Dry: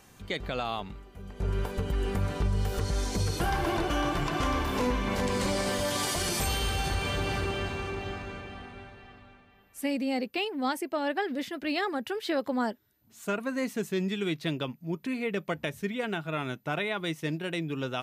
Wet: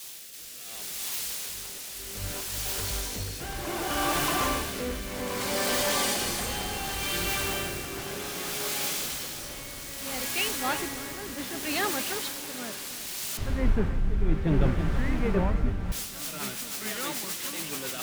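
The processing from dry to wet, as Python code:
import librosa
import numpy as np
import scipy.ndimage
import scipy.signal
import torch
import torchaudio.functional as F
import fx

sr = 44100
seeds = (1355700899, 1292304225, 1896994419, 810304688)

y = fx.auto_swell(x, sr, attack_ms=519.0)
y = fx.low_shelf(y, sr, hz=380.0, db=-9.5)
y = y + 10.0 ** (-10.5 / 20.0) * np.pad(y, (int(324 * sr / 1000.0), 0))[:len(y)]
y = fx.quant_dither(y, sr, seeds[0], bits=6, dither='triangular')
y = fx.leveller(y, sr, passes=2)
y = fx.rotary_switch(y, sr, hz=0.65, then_hz=7.0, switch_at_s=15.63)
y = fx.echo_pitch(y, sr, ms=336, semitones=-6, count=3, db_per_echo=-6.0)
y = fx.riaa(y, sr, side='playback', at=(13.37, 15.92))
y = np.clip(y, -10.0 ** (-18.5 / 20.0), 10.0 ** (-18.5 / 20.0))
y = fx.band_widen(y, sr, depth_pct=100)
y = y * 10.0 ** (-2.5 / 20.0)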